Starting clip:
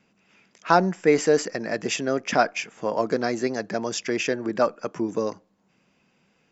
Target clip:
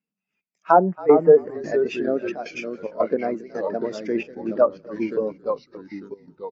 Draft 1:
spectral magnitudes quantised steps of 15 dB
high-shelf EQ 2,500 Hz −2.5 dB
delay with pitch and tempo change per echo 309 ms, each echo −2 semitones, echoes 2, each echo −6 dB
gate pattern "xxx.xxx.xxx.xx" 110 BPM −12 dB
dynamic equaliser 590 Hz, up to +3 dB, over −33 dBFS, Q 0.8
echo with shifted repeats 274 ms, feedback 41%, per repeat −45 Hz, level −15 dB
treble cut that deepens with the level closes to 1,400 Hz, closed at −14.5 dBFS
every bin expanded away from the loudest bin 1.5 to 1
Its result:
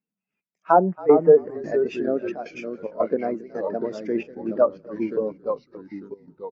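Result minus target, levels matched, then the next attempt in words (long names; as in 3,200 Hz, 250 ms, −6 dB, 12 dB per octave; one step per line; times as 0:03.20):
4,000 Hz band −5.0 dB
spectral magnitudes quantised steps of 15 dB
high-shelf EQ 2,500 Hz +4.5 dB
delay with pitch and tempo change per echo 309 ms, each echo −2 semitones, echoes 2, each echo −6 dB
gate pattern "xxx.xxx.xxx.xx" 110 BPM −12 dB
dynamic equaliser 590 Hz, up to +3 dB, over −33 dBFS, Q 0.8
echo with shifted repeats 274 ms, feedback 41%, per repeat −45 Hz, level −15 dB
treble cut that deepens with the level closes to 1,400 Hz, closed at −14.5 dBFS
every bin expanded away from the loudest bin 1.5 to 1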